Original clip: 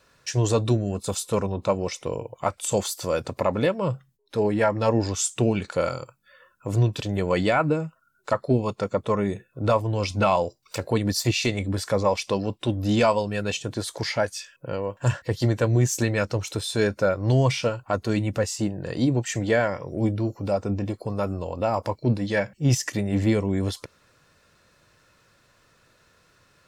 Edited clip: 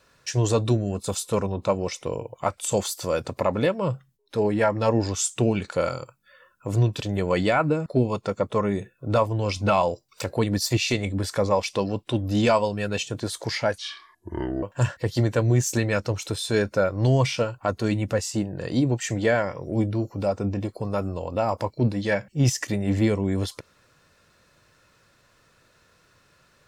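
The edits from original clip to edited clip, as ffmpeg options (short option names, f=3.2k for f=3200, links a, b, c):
-filter_complex "[0:a]asplit=4[a][b][c][d];[a]atrim=end=7.862[e];[b]atrim=start=8.398:end=14.324[f];[c]atrim=start=14.32:end=14.88,asetpts=PTS-STARTPTS,asetrate=29106,aresample=44100,atrim=end_sample=37418,asetpts=PTS-STARTPTS[g];[d]atrim=start=14.876[h];[e][f]acrossfade=d=0.004:c1=hsin:c2=hsin[i];[i][g]acrossfade=d=0.004:c1=hsin:c2=hsin[j];[j][h]acrossfade=d=0.004:c1=hsin:c2=hsin"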